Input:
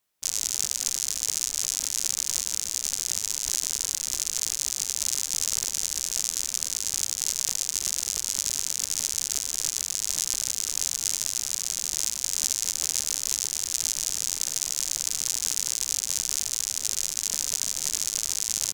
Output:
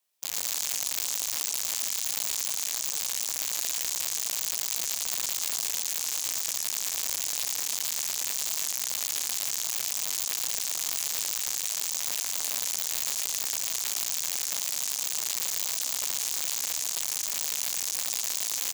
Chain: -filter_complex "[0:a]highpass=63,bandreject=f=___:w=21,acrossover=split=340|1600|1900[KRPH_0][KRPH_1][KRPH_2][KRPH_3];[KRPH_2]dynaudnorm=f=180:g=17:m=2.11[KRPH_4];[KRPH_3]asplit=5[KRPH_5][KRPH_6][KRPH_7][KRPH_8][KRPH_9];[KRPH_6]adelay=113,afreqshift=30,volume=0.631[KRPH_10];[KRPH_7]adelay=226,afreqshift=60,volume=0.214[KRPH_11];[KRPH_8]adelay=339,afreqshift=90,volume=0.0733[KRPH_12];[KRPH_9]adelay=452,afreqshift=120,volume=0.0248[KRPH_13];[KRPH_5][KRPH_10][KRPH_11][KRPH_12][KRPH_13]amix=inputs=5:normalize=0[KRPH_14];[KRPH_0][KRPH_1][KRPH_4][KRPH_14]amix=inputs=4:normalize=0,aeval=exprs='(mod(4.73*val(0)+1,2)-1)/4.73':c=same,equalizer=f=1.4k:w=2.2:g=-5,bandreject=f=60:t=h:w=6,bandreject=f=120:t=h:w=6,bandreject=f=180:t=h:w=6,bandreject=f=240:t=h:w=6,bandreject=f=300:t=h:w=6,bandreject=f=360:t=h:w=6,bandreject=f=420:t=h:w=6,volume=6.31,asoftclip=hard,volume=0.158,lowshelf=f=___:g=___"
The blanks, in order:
2.1k, 360, -10.5